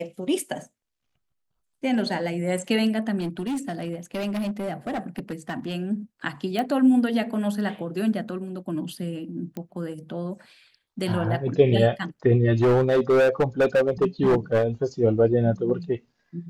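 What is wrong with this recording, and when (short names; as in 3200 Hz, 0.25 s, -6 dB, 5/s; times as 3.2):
3.19–5.74 clipped -24 dBFS
6.59 pop -14 dBFS
9.57 pop -21 dBFS
12.61–14.64 clipped -15.5 dBFS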